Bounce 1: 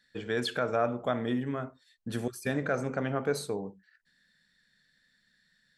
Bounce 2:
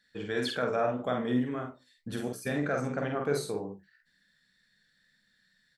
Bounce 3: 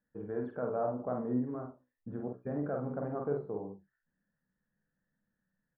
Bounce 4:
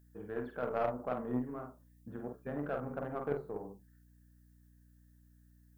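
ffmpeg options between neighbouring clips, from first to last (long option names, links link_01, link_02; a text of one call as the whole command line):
ffmpeg -i in.wav -af "flanger=delay=9.9:depth=6.3:regen=68:speed=1.9:shape=sinusoidal,aecho=1:1:48|68:0.631|0.178,volume=2.5dB" out.wav
ffmpeg -i in.wav -af "lowpass=frequency=1100:width=0.5412,lowpass=frequency=1100:width=1.3066,volume=-4dB" out.wav
ffmpeg -i in.wav -af "aeval=exprs='val(0)+0.00158*(sin(2*PI*60*n/s)+sin(2*PI*2*60*n/s)/2+sin(2*PI*3*60*n/s)/3+sin(2*PI*4*60*n/s)/4+sin(2*PI*5*60*n/s)/5)':channel_layout=same,crystalizer=i=10:c=0,aeval=exprs='0.119*(cos(1*acos(clip(val(0)/0.119,-1,1)))-cos(1*PI/2))+0.0188*(cos(3*acos(clip(val(0)/0.119,-1,1)))-cos(3*PI/2))+0.0015*(cos(8*acos(clip(val(0)/0.119,-1,1)))-cos(8*PI/2))':channel_layout=same" out.wav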